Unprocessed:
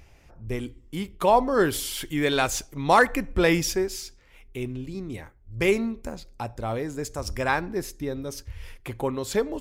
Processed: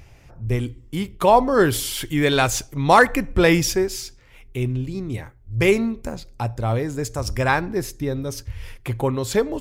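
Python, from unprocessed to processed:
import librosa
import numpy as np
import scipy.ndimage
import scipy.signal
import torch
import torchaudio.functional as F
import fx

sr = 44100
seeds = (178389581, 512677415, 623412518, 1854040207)

y = fx.peak_eq(x, sr, hz=120.0, db=8.5, octaves=0.51)
y = F.gain(torch.from_numpy(y), 4.5).numpy()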